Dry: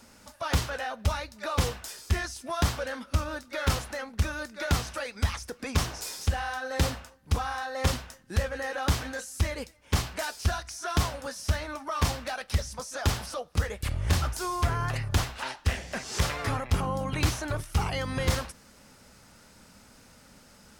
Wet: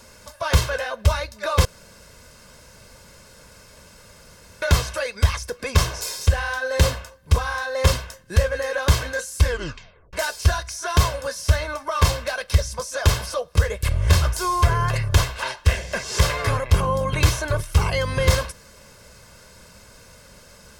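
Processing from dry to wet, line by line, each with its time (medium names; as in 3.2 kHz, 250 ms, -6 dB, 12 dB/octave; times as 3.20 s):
1.65–4.62 s: room tone
9.37 s: tape stop 0.76 s
whole clip: comb 1.9 ms, depth 61%; trim +6 dB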